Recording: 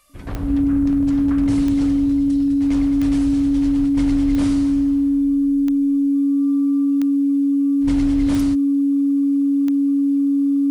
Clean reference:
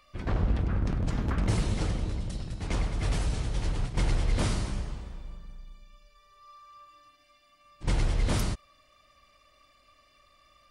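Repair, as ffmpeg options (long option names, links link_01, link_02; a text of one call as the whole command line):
ffmpeg -i in.wav -af "adeclick=threshold=4,bandreject=frequency=280:width=30,agate=range=-21dB:threshold=-9dB" out.wav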